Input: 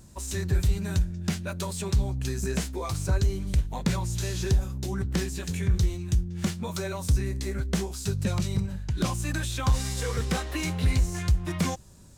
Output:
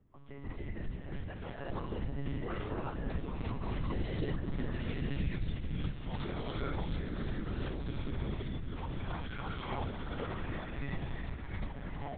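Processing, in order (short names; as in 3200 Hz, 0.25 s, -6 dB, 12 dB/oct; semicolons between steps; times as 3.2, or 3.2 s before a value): Doppler pass-by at 5.04, 41 m/s, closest 8.4 m; low-pass opened by the level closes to 2300 Hz, open at -33 dBFS; compressor 10:1, threshold -51 dBFS, peak gain reduction 31.5 dB; on a send: diffused feedback echo 0.526 s, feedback 63%, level -12 dB; on the sum: non-linear reverb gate 0.4 s rising, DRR -6 dB; monotone LPC vocoder at 8 kHz 140 Hz; gain +12 dB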